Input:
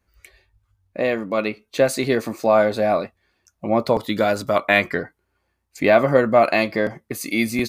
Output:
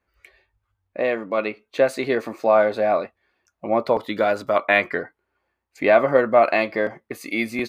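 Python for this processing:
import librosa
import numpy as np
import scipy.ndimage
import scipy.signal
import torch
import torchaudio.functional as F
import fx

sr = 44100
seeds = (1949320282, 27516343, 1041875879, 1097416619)

y = fx.bass_treble(x, sr, bass_db=-10, treble_db=-12)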